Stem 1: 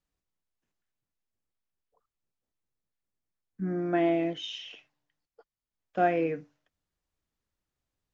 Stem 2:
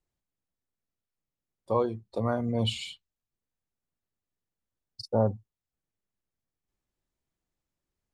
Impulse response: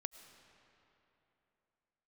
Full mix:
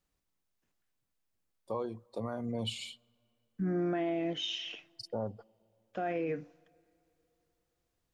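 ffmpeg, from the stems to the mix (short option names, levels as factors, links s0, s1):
-filter_complex "[0:a]alimiter=limit=0.0708:level=0:latency=1,volume=1.33,asplit=2[s0][s1];[s1]volume=0.0944[s2];[1:a]highpass=120,highshelf=f=8200:g=6.5,volume=0.501,asplit=2[s3][s4];[s4]volume=0.0891[s5];[2:a]atrim=start_sample=2205[s6];[s2][s5]amix=inputs=2:normalize=0[s7];[s7][s6]afir=irnorm=-1:irlink=0[s8];[s0][s3][s8]amix=inputs=3:normalize=0,alimiter=level_in=1.26:limit=0.0631:level=0:latency=1:release=124,volume=0.794"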